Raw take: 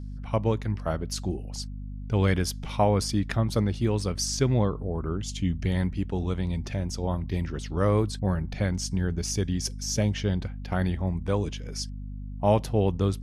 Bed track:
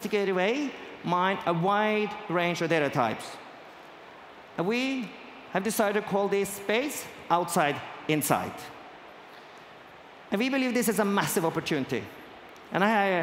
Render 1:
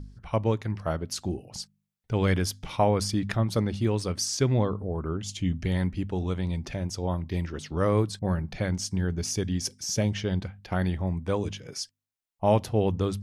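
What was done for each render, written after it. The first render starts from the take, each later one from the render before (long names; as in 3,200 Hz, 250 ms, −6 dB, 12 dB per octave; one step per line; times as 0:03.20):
hum removal 50 Hz, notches 5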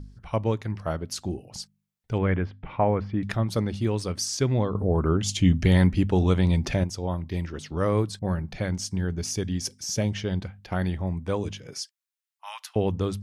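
0:02.18–0:03.23: low-pass filter 2,300 Hz 24 dB per octave
0:04.75–0:06.84: clip gain +8 dB
0:11.81–0:12.76: Butterworth high-pass 1,100 Hz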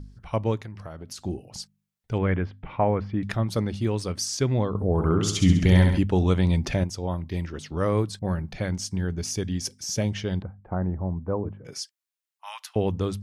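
0:00.57–0:01.23: downward compressor 8 to 1, threshold −34 dBFS
0:04.93–0:05.99: flutter between parallel walls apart 11.5 metres, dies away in 0.75 s
0:10.42–0:11.65: low-pass filter 1,200 Hz 24 dB per octave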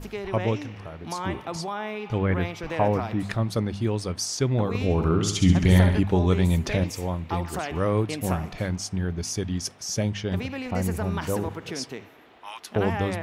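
mix in bed track −7 dB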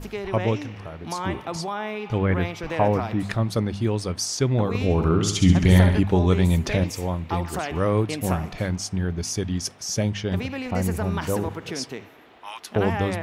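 level +2 dB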